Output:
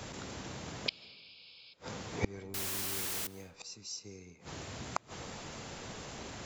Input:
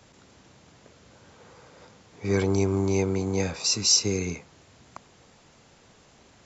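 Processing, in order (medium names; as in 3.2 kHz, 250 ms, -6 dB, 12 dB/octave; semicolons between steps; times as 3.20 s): 0.88–1.74 s: painted sound noise 2.2–5.3 kHz -33 dBFS; inverted gate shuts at -26 dBFS, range -34 dB; 2.54–3.27 s: word length cut 8-bit, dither triangular; reverberation RT60 1.5 s, pre-delay 105 ms, DRR 19 dB; trim +11 dB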